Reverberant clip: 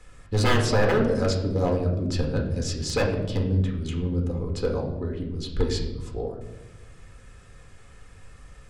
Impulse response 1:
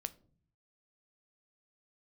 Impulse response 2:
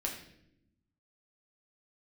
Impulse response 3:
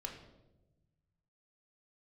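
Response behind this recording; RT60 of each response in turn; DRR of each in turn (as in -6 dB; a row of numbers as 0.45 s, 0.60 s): 3; 0.50 s, 0.75 s, 1.0 s; 12.0 dB, -1.5 dB, 0.5 dB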